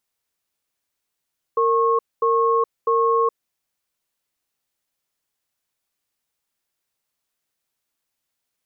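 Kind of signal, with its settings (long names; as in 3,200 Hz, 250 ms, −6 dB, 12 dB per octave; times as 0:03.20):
tone pair in a cadence 460 Hz, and 1,090 Hz, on 0.42 s, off 0.23 s, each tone −18 dBFS 1.73 s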